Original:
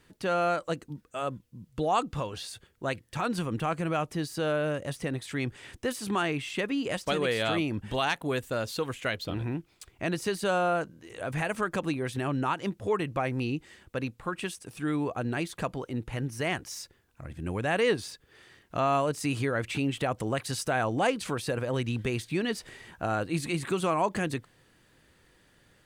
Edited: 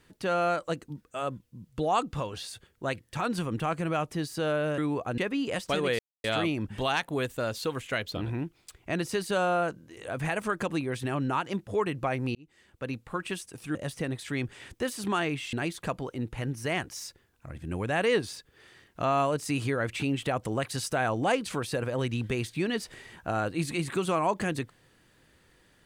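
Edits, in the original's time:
4.78–6.56 s: swap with 14.88–15.28 s
7.37 s: insert silence 0.25 s
13.48–14.16 s: fade in

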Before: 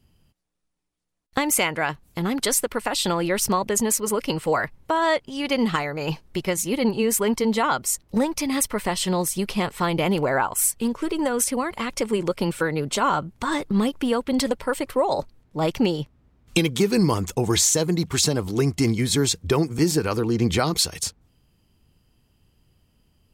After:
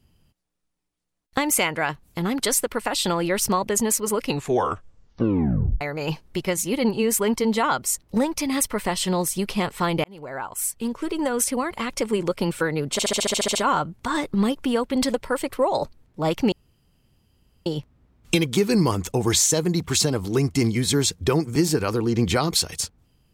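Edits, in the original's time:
4.22 s: tape stop 1.59 s
10.04–11.68 s: fade in equal-power
12.92 s: stutter 0.07 s, 10 plays
15.89 s: insert room tone 1.14 s

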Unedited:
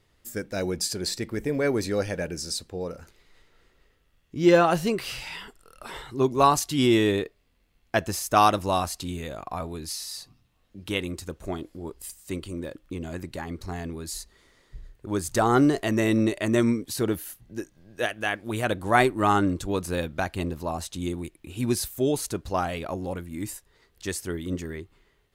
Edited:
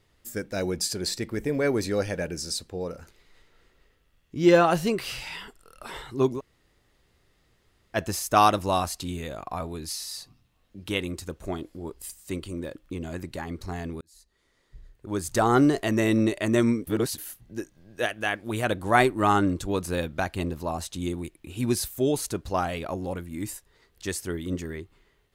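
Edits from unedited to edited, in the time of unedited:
6.38–7.96 s: room tone, crossfade 0.06 s
14.01–15.43 s: fade in
16.87–17.18 s: reverse

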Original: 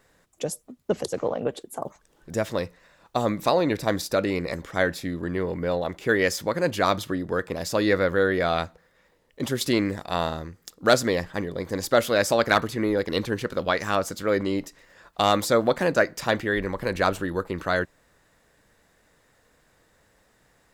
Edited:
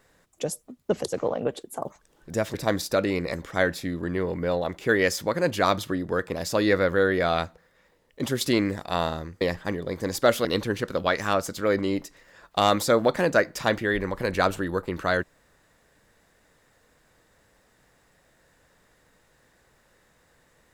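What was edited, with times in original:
2.54–3.74 s: delete
10.61–11.10 s: delete
12.14–13.07 s: delete

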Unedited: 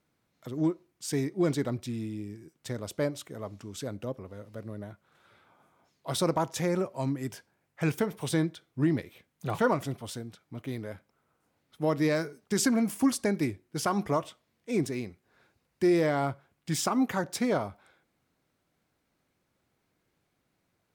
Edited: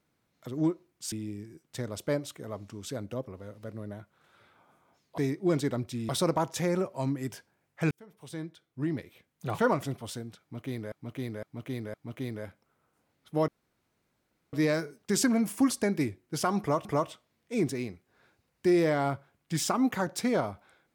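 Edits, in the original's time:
1.12–2.03 s: move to 6.09 s
7.91–9.68 s: fade in linear
10.41–10.92 s: loop, 4 plays
11.95 s: insert room tone 1.05 s
14.02–14.27 s: loop, 2 plays

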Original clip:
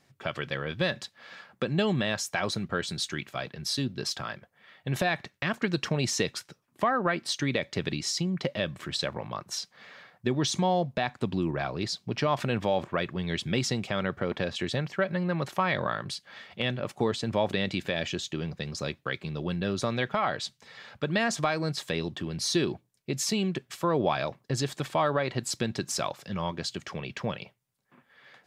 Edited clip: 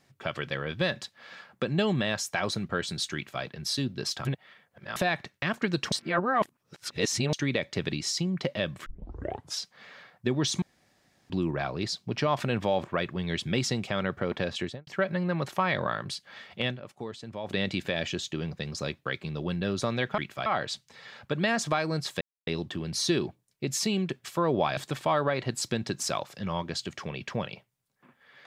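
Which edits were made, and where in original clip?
3.15–3.43 s: copy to 20.18 s
4.25–4.96 s: reverse
5.92–7.33 s: reverse
8.86 s: tape start 0.73 s
10.62–11.30 s: room tone
14.58–14.87 s: studio fade out
16.66–17.57 s: dip -11 dB, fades 0.14 s
21.93 s: insert silence 0.26 s
24.23–24.66 s: delete

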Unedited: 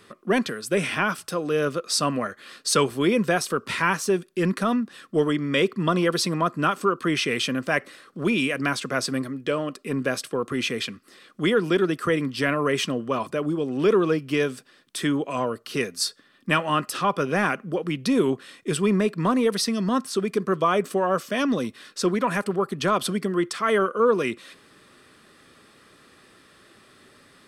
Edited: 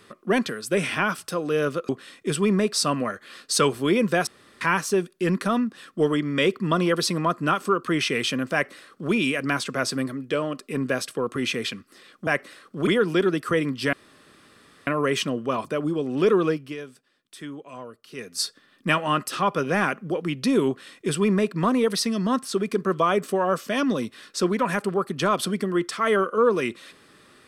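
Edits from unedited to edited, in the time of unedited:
3.43–3.77 s: room tone
7.69–8.29 s: copy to 11.43 s
12.49 s: insert room tone 0.94 s
14.09–16.07 s: dip -13 dB, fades 0.29 s
18.30–19.14 s: copy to 1.89 s

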